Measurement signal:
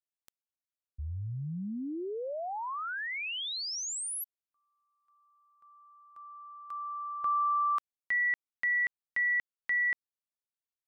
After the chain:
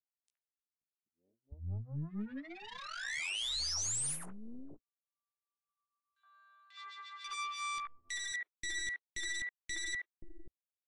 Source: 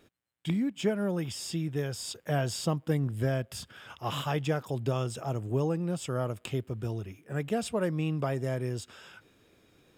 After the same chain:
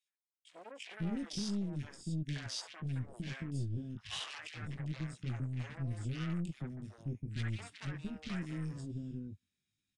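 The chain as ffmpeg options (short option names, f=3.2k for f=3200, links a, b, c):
-filter_complex "[0:a]afwtdn=0.01,flanger=delay=15.5:depth=5.2:speed=0.39,highshelf=f=4.1k:g=7,alimiter=level_in=1.5dB:limit=-24dB:level=0:latency=1:release=109,volume=-1.5dB,aeval=exprs='0.0562*(cos(1*acos(clip(val(0)/0.0562,-1,1)))-cos(1*PI/2))+0.0126*(cos(2*acos(clip(val(0)/0.0562,-1,1)))-cos(2*PI/2))+0.00501*(cos(7*acos(clip(val(0)/0.0562,-1,1)))-cos(7*PI/2))+0.000562*(cos(8*acos(clip(val(0)/0.0562,-1,1)))-cos(8*PI/2))':c=same,firequalizer=gain_entry='entry(220,0);entry(460,-21);entry(1900,3)':delay=0.05:min_phase=1,aeval=exprs='(tanh(79.4*val(0)+0.5)-tanh(0.5))/79.4':c=same,acrossover=split=500|2100[a][b][c];[b]adelay=70[d];[a]adelay=530[e];[e][d][c]amix=inputs=3:normalize=0,volume=5.5dB" -ar 22050 -c:a aac -b:a 64k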